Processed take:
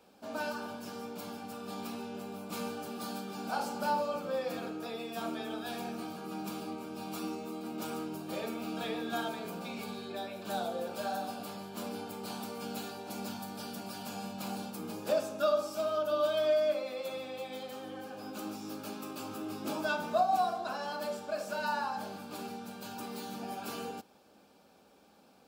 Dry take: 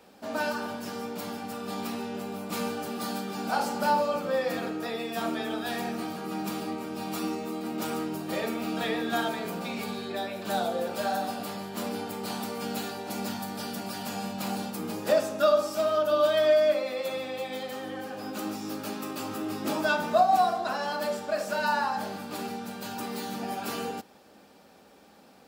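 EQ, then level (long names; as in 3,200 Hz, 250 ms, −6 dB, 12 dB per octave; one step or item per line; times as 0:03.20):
notch filter 1,900 Hz, Q 5.7
−6.5 dB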